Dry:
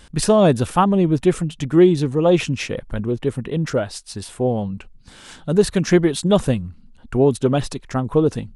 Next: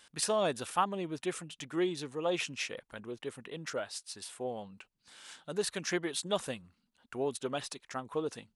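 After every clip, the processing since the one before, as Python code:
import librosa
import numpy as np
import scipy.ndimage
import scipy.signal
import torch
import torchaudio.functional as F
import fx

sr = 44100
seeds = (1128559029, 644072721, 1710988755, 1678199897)

y = fx.highpass(x, sr, hz=1200.0, slope=6)
y = F.gain(torch.from_numpy(y), -8.0).numpy()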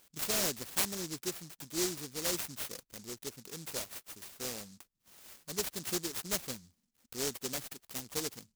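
y = fx.noise_mod_delay(x, sr, seeds[0], noise_hz=5800.0, depth_ms=0.36)
y = F.gain(torch.from_numpy(y), -2.5).numpy()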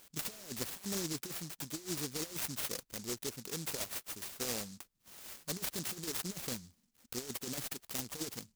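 y = fx.over_compress(x, sr, threshold_db=-39.0, ratio=-0.5)
y = F.gain(torch.from_numpy(y), 1.0).numpy()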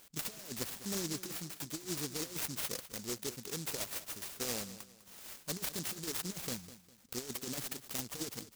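y = fx.echo_feedback(x, sr, ms=202, feedback_pct=35, wet_db=-15)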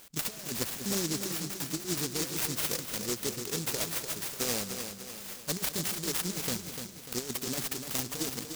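y = fx.echo_feedback(x, sr, ms=296, feedback_pct=48, wet_db=-7.5)
y = F.gain(torch.from_numpy(y), 6.0).numpy()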